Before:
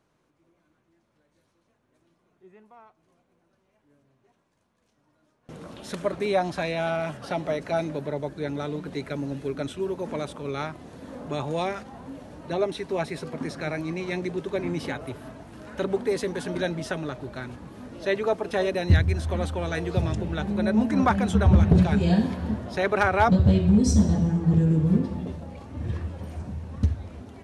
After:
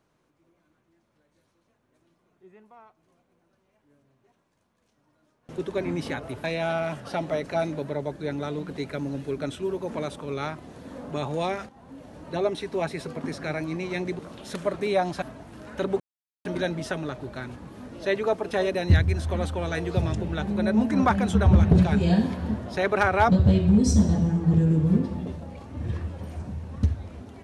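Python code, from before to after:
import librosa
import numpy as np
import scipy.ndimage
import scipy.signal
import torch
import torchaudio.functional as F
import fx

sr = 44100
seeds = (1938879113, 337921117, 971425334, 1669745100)

y = fx.edit(x, sr, fx.swap(start_s=5.58, length_s=1.03, other_s=14.36, other_length_s=0.86),
    fx.fade_in_from(start_s=11.86, length_s=0.56, floor_db=-12.5),
    fx.silence(start_s=16.0, length_s=0.45), tone=tone)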